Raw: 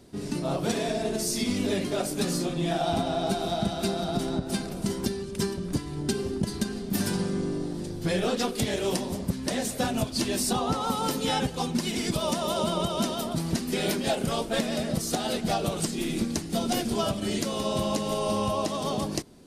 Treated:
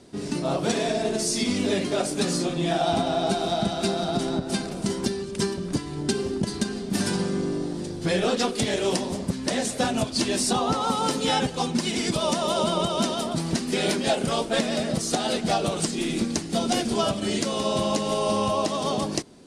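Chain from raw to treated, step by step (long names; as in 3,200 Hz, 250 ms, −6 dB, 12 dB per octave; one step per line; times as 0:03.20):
low-pass filter 9,800 Hz 24 dB per octave
low-shelf EQ 110 Hz −9 dB
level +4 dB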